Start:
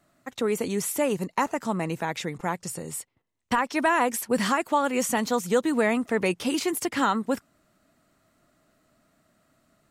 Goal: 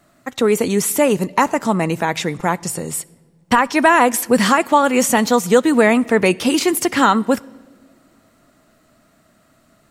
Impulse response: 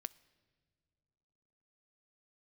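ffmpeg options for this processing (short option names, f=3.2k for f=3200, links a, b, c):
-filter_complex "[0:a]asplit=2[a][b];[1:a]atrim=start_sample=2205[c];[b][c]afir=irnorm=-1:irlink=0,volume=15dB[d];[a][d]amix=inputs=2:normalize=0,volume=-3.5dB"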